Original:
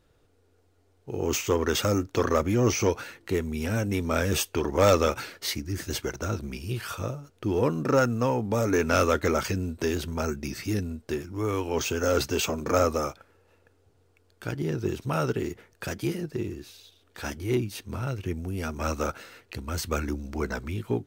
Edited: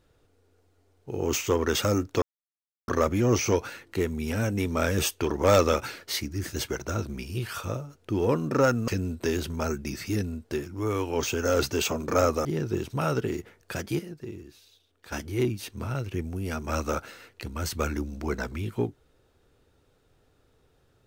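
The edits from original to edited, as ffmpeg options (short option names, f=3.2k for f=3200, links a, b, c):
-filter_complex "[0:a]asplit=6[a][b][c][d][e][f];[a]atrim=end=2.22,asetpts=PTS-STARTPTS,afade=t=out:st=2.216:d=0.004:c=hsin,apad=pad_dur=0.66[g];[b]atrim=start=2.22:end=8.222,asetpts=PTS-STARTPTS,afade=t=in:d=0.004:c=hsin[h];[c]atrim=start=9.458:end=13.032[i];[d]atrim=start=14.568:end=16.112[j];[e]atrim=start=16.108:end=17.242,asetpts=PTS-STARTPTS,volume=-7.5dB[k];[f]atrim=start=17.238[l];[g][h]concat=n=2:v=0:a=1[m];[m][i]acrossfade=d=0.004:c1=hsin:c2=hsin[n];[n][j]acrossfade=d=0.004:c1=hsin:c2=hsin[o];[o][k]acrossfade=d=0.004:c1=hsin:c2=hsin[p];[p][l]acrossfade=d=0.004:c1=hsin:c2=hsin"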